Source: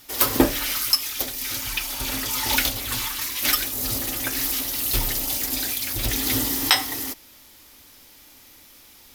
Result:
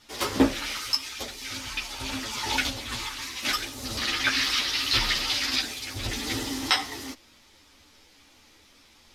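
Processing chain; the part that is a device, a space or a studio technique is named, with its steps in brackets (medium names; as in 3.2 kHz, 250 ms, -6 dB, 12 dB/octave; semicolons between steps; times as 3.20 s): 3.97–5.61 s: high-order bell 2.4 kHz +11 dB 2.6 oct; string-machine ensemble chorus (three-phase chorus; low-pass 6 kHz 12 dB/octave)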